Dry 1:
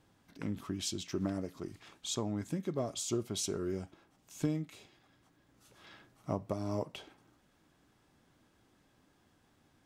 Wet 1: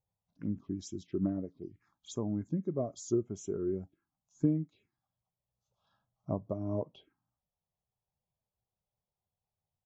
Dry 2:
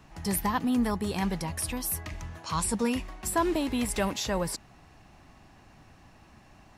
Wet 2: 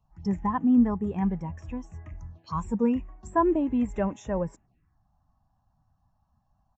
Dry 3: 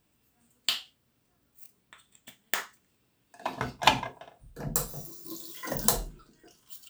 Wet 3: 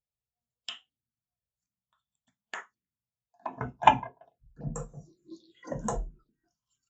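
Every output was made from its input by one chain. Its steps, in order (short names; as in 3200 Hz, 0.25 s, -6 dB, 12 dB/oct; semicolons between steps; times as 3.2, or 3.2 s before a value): envelope phaser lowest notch 270 Hz, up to 4500 Hz, full sweep at -33 dBFS; downsampling 16000 Hz; spectral expander 1.5:1; gain +3.5 dB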